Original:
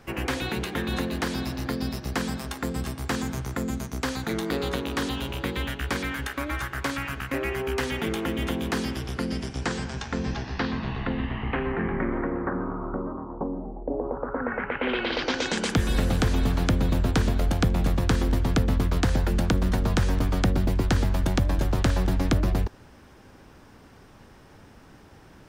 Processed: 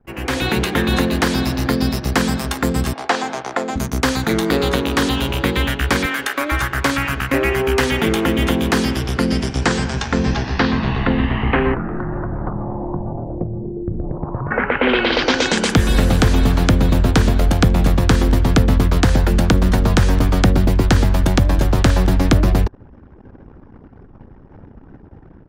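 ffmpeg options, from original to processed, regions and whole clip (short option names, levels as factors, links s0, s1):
-filter_complex "[0:a]asettb=1/sr,asplit=3[s0][s1][s2];[s0]atrim=end=2.934[s3];[s1]atrim=start=2.93:end=3.76,asetpts=PTS-STARTPTS,afade=t=in:d=0.004:c=qsin,afade=t=out:st=0.826:d=0.004:c=qsin,highpass=430,lowpass=5500,equalizer=f=730:t=o:w=0.57:g=8.5[s4];[s2]atrim=start=3.756[s5];[s3][s4]acrossfade=d=0.004:c1=hsin:c2=qsin[s6];[s6][s5]acrossfade=d=0.004:c1=qsin:c2=hsin,asettb=1/sr,asplit=3[s7][s8][s9];[s7]atrim=end=6.064[s10];[s8]atrim=start=6.06:end=6.52,asetpts=PTS-STARTPTS,afade=t=in:d=0.004:c=qsin,afade=t=out:st=0.456:d=0.004:c=qsin,highpass=330,bandreject=f=910:w=15[s11];[s9]atrim=start=6.516[s12];[s10][s11]acrossfade=d=0.004:c1=hsin:c2=qsin[s13];[s13][s12]acrossfade=d=0.004:c1=qsin:c2=hsin,asettb=1/sr,asplit=3[s14][s15][s16];[s14]atrim=end=11.744[s17];[s15]atrim=start=11.74:end=14.51,asetpts=PTS-STARTPTS,afade=t=in:d=0.004:c=qsin,afade=t=out:st=2.766:d=0.004:c=qsin,acrossover=split=550|1900[s18][s19][s20];[s18]acompressor=threshold=0.0178:ratio=4[s21];[s19]acompressor=threshold=0.00891:ratio=4[s22];[s20]acompressor=threshold=0.00158:ratio=4[s23];[s21][s22][s23]amix=inputs=3:normalize=0,afreqshift=-390[s24];[s16]atrim=start=14.506[s25];[s17][s24]acrossfade=d=0.004:c1=hsin:c2=qsin[s26];[s26][s25]acrossfade=d=0.004:c1=qsin:c2=hsin,anlmdn=0.0158,dynaudnorm=f=130:g=5:m=3.98"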